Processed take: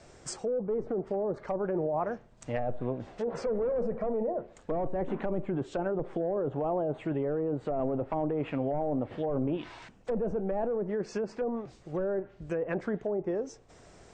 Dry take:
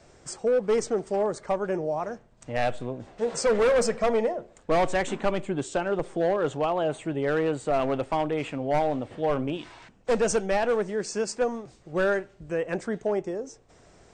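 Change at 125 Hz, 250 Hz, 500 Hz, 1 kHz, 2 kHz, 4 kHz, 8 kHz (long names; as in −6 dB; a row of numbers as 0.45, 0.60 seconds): −1.5 dB, −2.0 dB, −5.5 dB, −8.0 dB, −13.0 dB, below −10 dB, below −10 dB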